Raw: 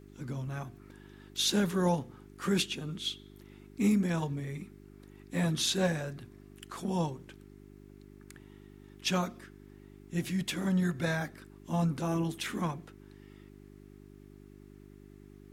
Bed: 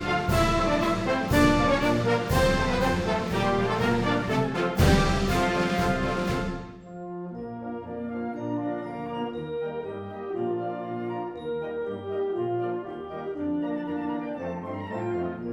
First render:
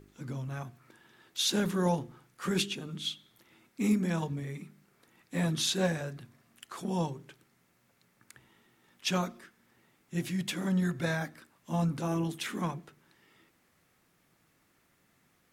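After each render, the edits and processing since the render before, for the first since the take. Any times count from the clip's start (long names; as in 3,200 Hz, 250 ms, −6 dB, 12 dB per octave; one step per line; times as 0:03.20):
hum removal 50 Hz, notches 8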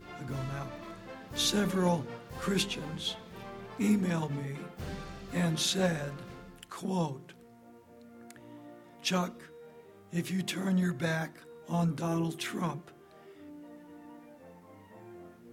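mix in bed −20.5 dB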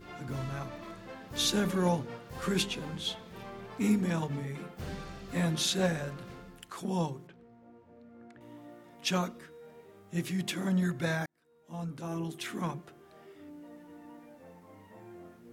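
0:07.27–0:08.41: head-to-tape spacing loss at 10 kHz 25 dB
0:11.26–0:12.84: fade in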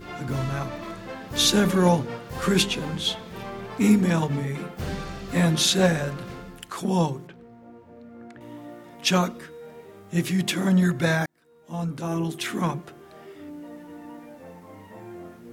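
level +9 dB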